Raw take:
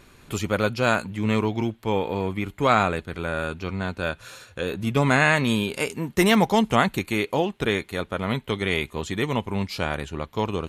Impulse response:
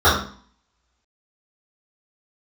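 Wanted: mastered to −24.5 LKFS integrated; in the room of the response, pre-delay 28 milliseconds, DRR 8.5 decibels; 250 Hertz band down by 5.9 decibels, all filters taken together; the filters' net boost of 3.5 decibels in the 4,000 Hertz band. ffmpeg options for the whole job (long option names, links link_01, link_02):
-filter_complex "[0:a]equalizer=frequency=250:width_type=o:gain=-8,equalizer=frequency=4000:width_type=o:gain=4.5,asplit=2[link_01][link_02];[1:a]atrim=start_sample=2205,adelay=28[link_03];[link_02][link_03]afir=irnorm=-1:irlink=0,volume=-34dB[link_04];[link_01][link_04]amix=inputs=2:normalize=0"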